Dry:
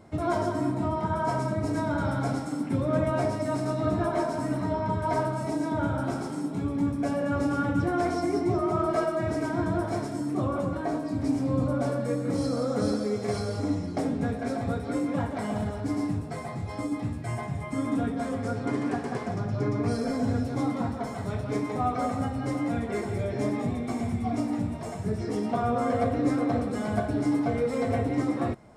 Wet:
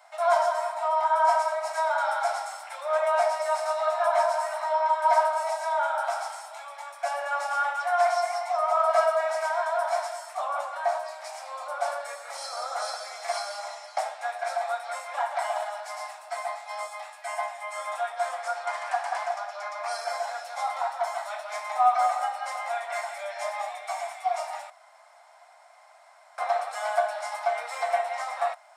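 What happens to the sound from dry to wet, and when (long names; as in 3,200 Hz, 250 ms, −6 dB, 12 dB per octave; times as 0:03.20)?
0:24.70–0:26.38: fill with room tone
whole clip: Butterworth high-pass 640 Hz 72 dB per octave; notch filter 1,100 Hz, Q 20; dynamic equaliser 850 Hz, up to +4 dB, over −41 dBFS, Q 1.2; level +5 dB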